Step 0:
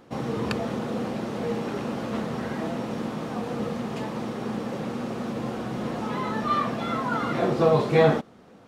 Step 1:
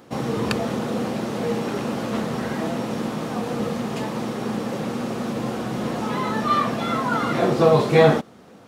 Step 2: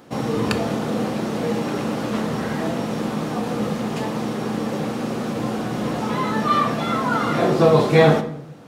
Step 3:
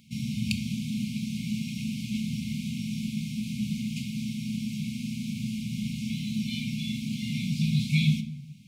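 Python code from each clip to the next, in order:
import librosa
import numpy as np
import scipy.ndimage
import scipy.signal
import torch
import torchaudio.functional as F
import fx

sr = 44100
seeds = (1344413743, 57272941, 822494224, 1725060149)

y1 = scipy.signal.sosfilt(scipy.signal.butter(2, 62.0, 'highpass', fs=sr, output='sos'), x)
y1 = fx.high_shelf(y1, sr, hz=5700.0, db=7.0)
y1 = y1 * librosa.db_to_amplitude(4.0)
y2 = fx.room_shoebox(y1, sr, seeds[0], volume_m3=200.0, walls='mixed', distance_m=0.38)
y2 = y2 * librosa.db_to_amplitude(1.0)
y3 = fx.brickwall_bandstop(y2, sr, low_hz=250.0, high_hz=2100.0)
y3 = y3 * librosa.db_to_amplitude(-4.0)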